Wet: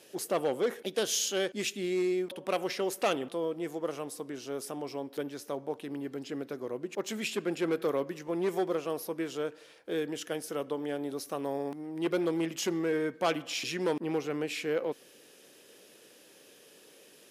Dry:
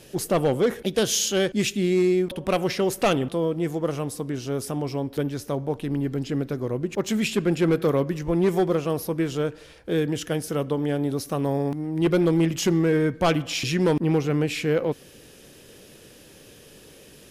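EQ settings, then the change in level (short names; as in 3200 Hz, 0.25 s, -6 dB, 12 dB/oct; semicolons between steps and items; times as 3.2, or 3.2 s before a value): HPF 320 Hz 12 dB/oct; -6.5 dB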